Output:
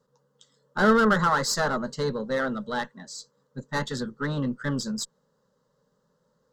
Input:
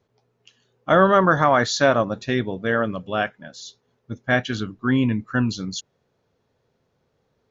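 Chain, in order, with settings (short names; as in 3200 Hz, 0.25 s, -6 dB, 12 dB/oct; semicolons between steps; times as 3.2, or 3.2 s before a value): one diode to ground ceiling -20 dBFS; fixed phaser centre 410 Hz, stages 8; wide varispeed 1.15×; gain +2 dB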